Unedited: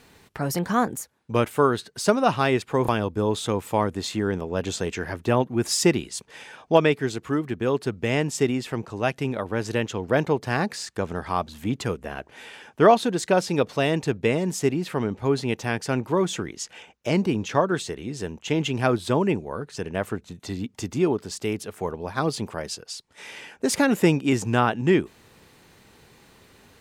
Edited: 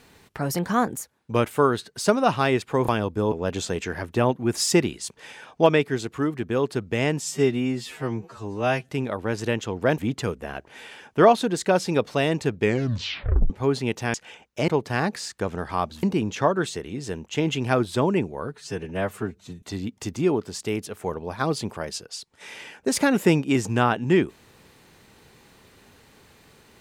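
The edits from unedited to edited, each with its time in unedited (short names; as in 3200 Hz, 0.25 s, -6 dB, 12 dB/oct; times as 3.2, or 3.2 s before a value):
3.32–4.43 cut
8.32–9.16 stretch 2×
10.25–11.6 move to 17.16
14.21 tape stop 0.91 s
15.76–16.62 cut
19.67–20.39 stretch 1.5×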